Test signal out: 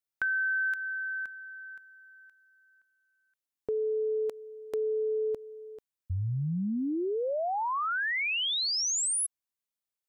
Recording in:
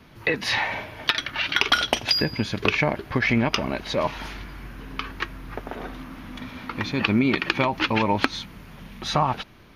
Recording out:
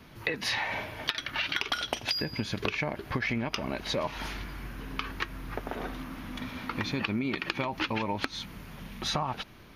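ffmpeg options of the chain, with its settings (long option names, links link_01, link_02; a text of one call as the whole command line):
ffmpeg -i in.wav -af "highshelf=frequency=6700:gain=4.5,acompressor=threshold=-26dB:ratio=5,volume=-1.5dB" out.wav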